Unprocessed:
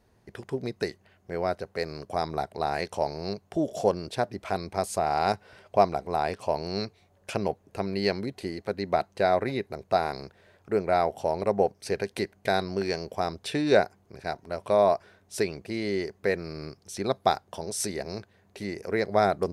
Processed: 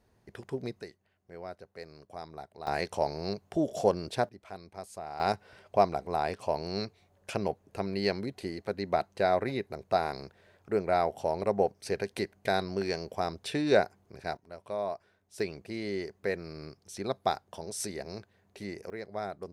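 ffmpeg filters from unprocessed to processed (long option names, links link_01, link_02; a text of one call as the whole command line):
ffmpeg -i in.wav -af "asetnsamples=nb_out_samples=441:pad=0,asendcmd='0.81 volume volume -14dB;2.67 volume volume -1.5dB;4.29 volume volume -14.5dB;5.2 volume volume -3dB;14.37 volume volume -12.5dB;15.4 volume volume -5.5dB;18.9 volume volume -14dB',volume=-4dB" out.wav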